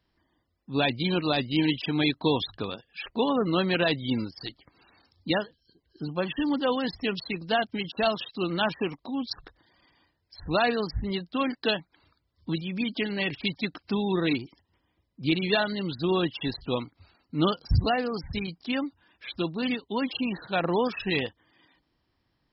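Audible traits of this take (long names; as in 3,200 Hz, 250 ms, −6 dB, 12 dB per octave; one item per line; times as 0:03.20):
background noise floor −75 dBFS
spectral slope −4.0 dB per octave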